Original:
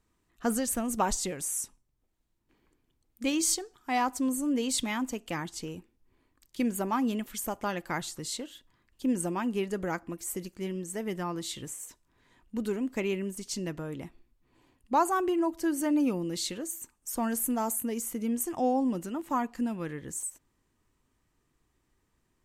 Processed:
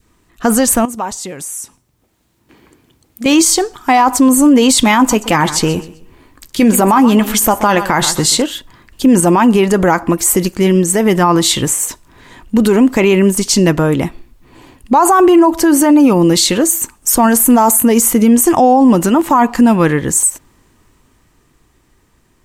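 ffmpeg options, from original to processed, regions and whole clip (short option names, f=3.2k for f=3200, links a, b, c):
-filter_complex "[0:a]asettb=1/sr,asplit=3[a][b][c];[a]atrim=end=0.854[d];[b]atrim=start=0.85:end=3.26,asetpts=PTS-STARTPTS,afade=t=in:d=0.004:c=qsin,afade=t=out:st=2.406:d=0.004:c=qsin,highpass=78,acompressor=threshold=-53dB:ratio=2:attack=3.2:release=140:knee=1:detection=peak[e];[c]atrim=start=3.256[f];[d][e]acrossfade=d=0.004:c1=hsin:c2=qsin[g];[g][f]acrossfade=d=0.004:c1=qsin:c2=hsin,asettb=1/sr,asplit=3[h][i][j];[h]atrim=end=4.984[k];[i]atrim=start=4.98:end=8.42,asetpts=PTS-STARTPTS,afade=t=in:d=0.004:c=qsin,afade=t=out:st=3.436:d=0.004:c=qsin,asplit=2[l][m];[m]adelay=14,volume=-12.5dB[n];[l][n]amix=inputs=2:normalize=0,atrim=end_sample=151704,aecho=1:1:129|258|387:0.133|0.0387|0.0112,atrim=end_sample=151704[o];[j]atrim=start=8.416[p];[k][o]acrossfade=d=0.004:c1=hsin:c2=qsin[q];[q][p]acrossfade=d=0.004:c1=qsin:c2=hsin,adynamicequalizer=threshold=0.00631:dfrequency=950:dqfactor=1.5:tfrequency=950:tqfactor=1.5:attack=5:release=100:ratio=0.375:range=3.5:mode=boostabove:tftype=bell,dynaudnorm=f=260:g=17:m=6dB,alimiter=level_in=20dB:limit=-1dB:release=50:level=0:latency=1,volume=-1dB"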